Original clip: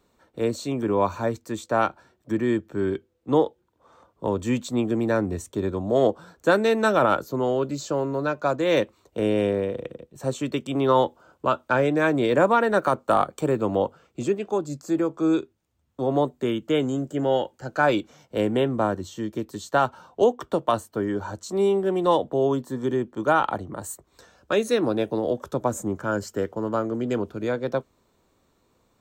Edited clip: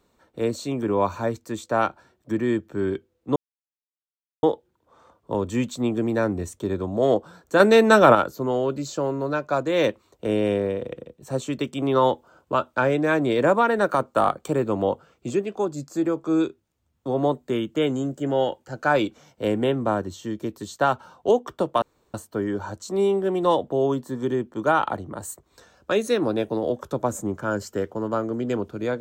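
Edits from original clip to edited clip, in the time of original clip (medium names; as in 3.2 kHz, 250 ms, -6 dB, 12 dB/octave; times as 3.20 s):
3.36 s: insert silence 1.07 s
6.53–7.08 s: gain +6 dB
20.75 s: insert room tone 0.32 s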